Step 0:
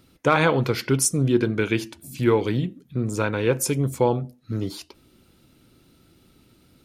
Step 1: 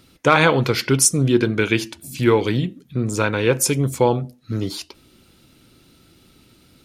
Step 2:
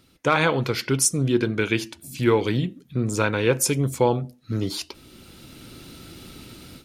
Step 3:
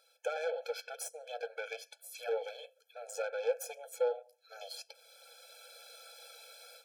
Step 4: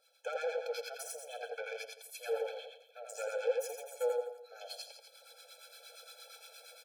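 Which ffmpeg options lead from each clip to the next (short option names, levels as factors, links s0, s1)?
-af "equalizer=f=4400:w=0.37:g=4.5,volume=1.41"
-af "dynaudnorm=f=520:g=3:m=6.31,volume=0.531"
-filter_complex "[0:a]aeval=exprs='(tanh(7.08*val(0)+0.75)-tanh(0.75))/7.08':c=same,acrossover=split=490[s0][s1];[s1]acompressor=threshold=0.00631:ratio=3[s2];[s0][s2]amix=inputs=2:normalize=0,afftfilt=real='re*eq(mod(floor(b*sr/1024/440),2),1)':imag='im*eq(mod(floor(b*sr/1024/440),2),1)':win_size=1024:overlap=0.75,volume=1.12"
-filter_complex "[0:a]asuperstop=centerf=1000:order=4:qfactor=7.6,asplit=2[s0][s1];[s1]aecho=0:1:84|168|252|336|420|504:0.708|0.333|0.156|0.0735|0.0345|0.0162[s2];[s0][s2]amix=inputs=2:normalize=0,acrossover=split=870[s3][s4];[s3]aeval=exprs='val(0)*(1-0.7/2+0.7/2*cos(2*PI*8.6*n/s))':c=same[s5];[s4]aeval=exprs='val(0)*(1-0.7/2-0.7/2*cos(2*PI*8.6*n/s))':c=same[s6];[s5][s6]amix=inputs=2:normalize=0,volume=1.12"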